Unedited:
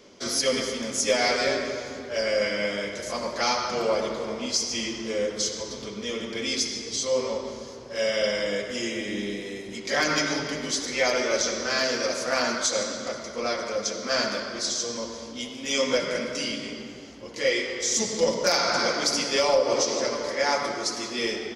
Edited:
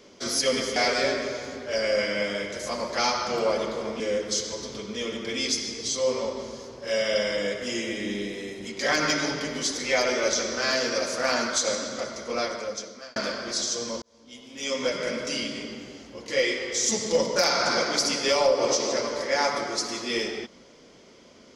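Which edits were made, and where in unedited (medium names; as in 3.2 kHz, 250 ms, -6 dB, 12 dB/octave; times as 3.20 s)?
0.76–1.19 s: delete
4.43–5.08 s: delete
13.49–14.24 s: fade out
15.10–16.27 s: fade in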